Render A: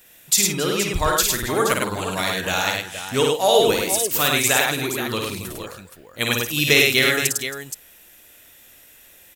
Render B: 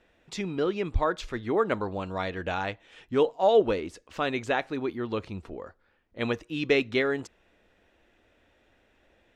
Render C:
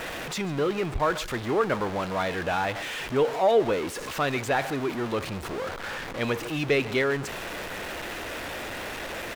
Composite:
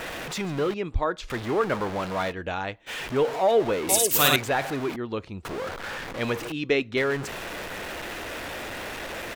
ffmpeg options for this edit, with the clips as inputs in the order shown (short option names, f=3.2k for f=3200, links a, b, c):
-filter_complex "[1:a]asplit=4[a][b][c][d];[2:a]asplit=6[e][f][g][h][i][j];[e]atrim=end=0.742[k];[a]atrim=start=0.738:end=1.302[l];[f]atrim=start=1.298:end=2.33[m];[b]atrim=start=2.29:end=2.9[n];[g]atrim=start=2.86:end=3.892[o];[0:a]atrim=start=3.888:end=4.362[p];[h]atrim=start=4.358:end=4.962[q];[c]atrim=start=4.958:end=5.452[r];[i]atrim=start=5.448:end=6.522[s];[d]atrim=start=6.518:end=6.972[t];[j]atrim=start=6.968[u];[k][l]acrossfade=d=0.004:c1=hsin:c2=hsin[v];[v][m]acrossfade=d=0.004:c1=hsin:c2=hsin[w];[w][n]acrossfade=d=0.04:c1=tri:c2=tri[x];[x][o]acrossfade=d=0.04:c1=tri:c2=tri[y];[y][p]acrossfade=d=0.004:c1=hsin:c2=hsin[z];[z][q]acrossfade=d=0.004:c1=hsin:c2=hsin[aa];[aa][r]acrossfade=d=0.004:c1=hsin:c2=hsin[ab];[ab][s]acrossfade=d=0.004:c1=hsin:c2=hsin[ac];[ac][t]acrossfade=d=0.004:c1=hsin:c2=hsin[ad];[ad][u]acrossfade=d=0.004:c1=hsin:c2=hsin"